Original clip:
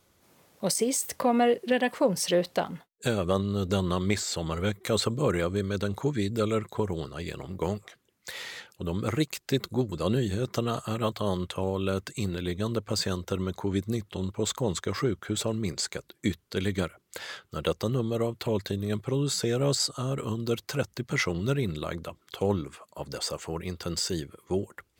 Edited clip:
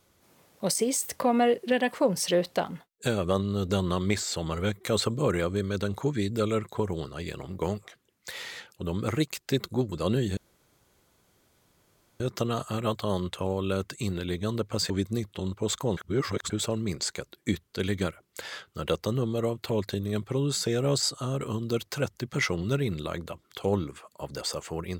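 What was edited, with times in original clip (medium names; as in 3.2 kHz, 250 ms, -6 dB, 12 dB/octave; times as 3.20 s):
10.37 s: insert room tone 1.83 s
13.07–13.67 s: delete
14.74–15.27 s: reverse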